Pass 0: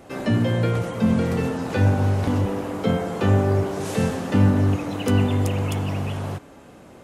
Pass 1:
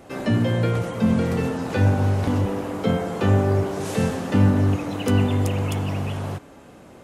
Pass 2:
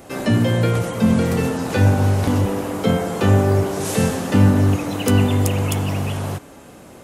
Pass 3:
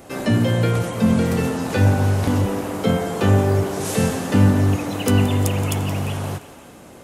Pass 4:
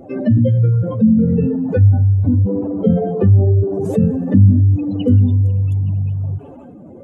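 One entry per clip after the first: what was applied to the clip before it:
no audible change
treble shelf 6.5 kHz +10.5 dB; trim +3.5 dB
thinning echo 173 ms, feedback 58%, level -14 dB; trim -1 dB
spectral contrast enhancement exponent 2.7; trim +5.5 dB

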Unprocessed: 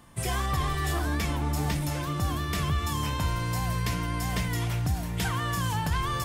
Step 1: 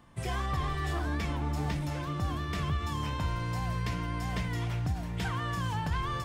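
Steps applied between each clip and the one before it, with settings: peaking EQ 13 kHz -14 dB 1.4 oct; endings held to a fixed fall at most 180 dB/s; trim -3.5 dB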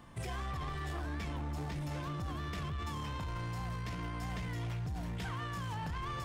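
peak limiter -32 dBFS, peak gain reduction 10.5 dB; saturation -36 dBFS, distortion -17 dB; trim +3 dB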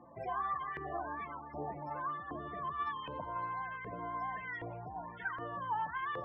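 loudest bins only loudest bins 32; LFO band-pass saw up 1.3 Hz 510–2000 Hz; trim +11 dB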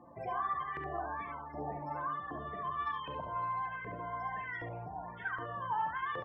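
early reflections 42 ms -12.5 dB, 70 ms -6 dB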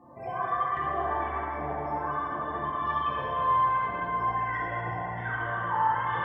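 plate-style reverb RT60 4.2 s, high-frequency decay 0.8×, DRR -7.5 dB

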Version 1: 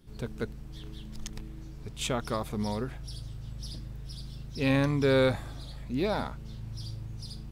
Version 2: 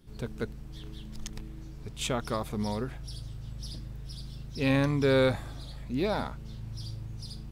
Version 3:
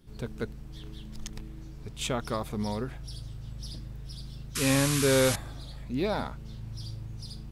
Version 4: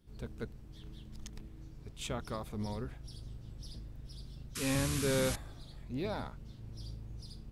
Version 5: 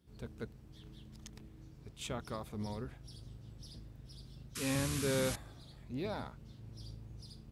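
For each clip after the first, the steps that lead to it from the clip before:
no audible change
painted sound noise, 4.55–5.36 s, 980–12000 Hz -32 dBFS
octave divider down 1 oct, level -2 dB; trim -8.5 dB
high-pass 61 Hz; trim -2 dB

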